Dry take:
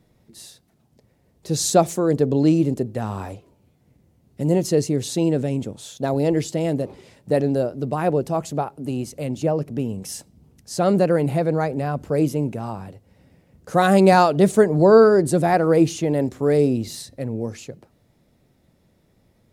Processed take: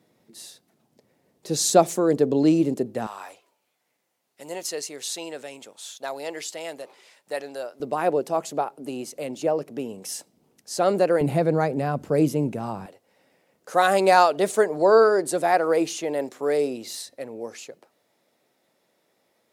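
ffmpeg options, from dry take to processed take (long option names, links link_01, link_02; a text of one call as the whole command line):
ffmpeg -i in.wav -af "asetnsamples=nb_out_samples=441:pad=0,asendcmd='3.07 highpass f 960;7.8 highpass f 360;11.21 highpass f 140;12.86 highpass f 500',highpass=230" out.wav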